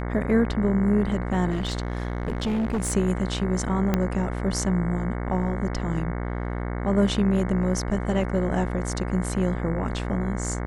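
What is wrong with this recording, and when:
buzz 60 Hz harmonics 37 -29 dBFS
1.5–2.93 clipped -21.5 dBFS
3.94 pop -9 dBFS

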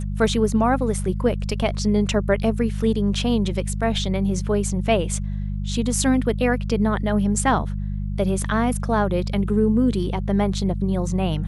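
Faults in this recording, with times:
hum 50 Hz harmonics 4 -26 dBFS

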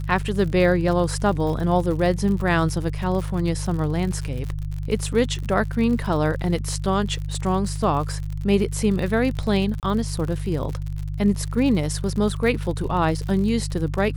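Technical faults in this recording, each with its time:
crackle 67/s -29 dBFS
hum 50 Hz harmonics 3 -28 dBFS
9.8–9.83 gap 28 ms

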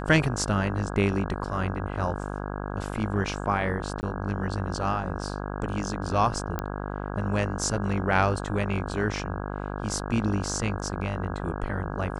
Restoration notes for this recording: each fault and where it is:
buzz 50 Hz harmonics 33 -33 dBFS
4.01–4.03 gap 19 ms
6.59 pop -15 dBFS

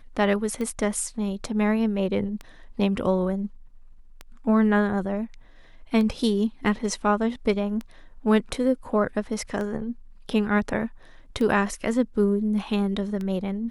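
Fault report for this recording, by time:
tick 33 1/3 rpm -20 dBFS

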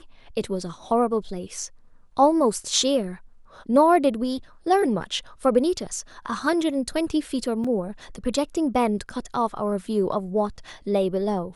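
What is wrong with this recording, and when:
7.64 gap 4.9 ms

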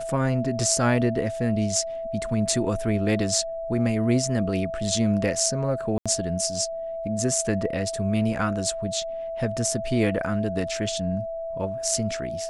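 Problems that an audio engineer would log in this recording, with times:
tone 660 Hz -29 dBFS
5.98–6.06 gap 76 ms

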